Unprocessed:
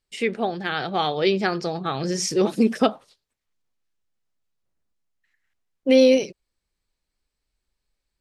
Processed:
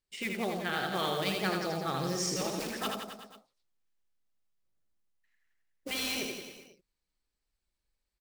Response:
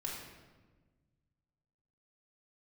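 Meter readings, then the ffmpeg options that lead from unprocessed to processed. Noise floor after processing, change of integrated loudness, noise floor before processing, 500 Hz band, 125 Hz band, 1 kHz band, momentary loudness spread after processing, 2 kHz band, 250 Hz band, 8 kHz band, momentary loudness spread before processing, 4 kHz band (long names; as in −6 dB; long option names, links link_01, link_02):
below −85 dBFS, −11.5 dB, −82 dBFS, −15.5 dB, −7.0 dB, −8.5 dB, 13 LU, −6.0 dB, −14.0 dB, −4.5 dB, 11 LU, −5.5 dB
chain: -af "acrusher=bits=4:mode=log:mix=0:aa=0.000001,afftfilt=real='re*lt(hypot(re,im),0.562)':imag='im*lt(hypot(re,im),0.562)':win_size=1024:overlap=0.75,aecho=1:1:80|168|264.8|371.3|488.4:0.631|0.398|0.251|0.158|0.1,volume=-8dB"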